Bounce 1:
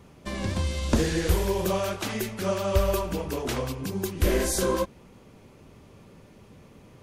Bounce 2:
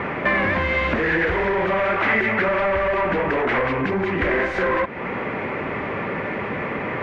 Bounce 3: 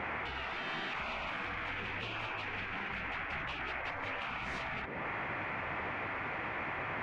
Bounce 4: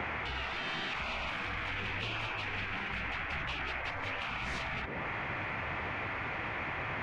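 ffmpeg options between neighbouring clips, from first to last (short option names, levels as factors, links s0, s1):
-filter_complex "[0:a]asplit=2[s0][s1];[s1]highpass=f=720:p=1,volume=39.8,asoftclip=type=tanh:threshold=0.335[s2];[s0][s2]amix=inputs=2:normalize=0,lowpass=f=1300:p=1,volume=0.501,acompressor=threshold=0.0316:ratio=4,lowpass=f=2000:t=q:w=3.6,volume=2.24"
-af "afftfilt=real='re*lt(hypot(re,im),0.141)':imag='im*lt(hypot(re,im),0.141)':win_size=1024:overlap=0.75,volume=0.422"
-filter_complex "[0:a]acrossover=split=140|3000[s0][s1][s2];[s1]acompressor=threshold=0.00398:ratio=2[s3];[s0][s3][s2]amix=inputs=3:normalize=0,volume=2.11"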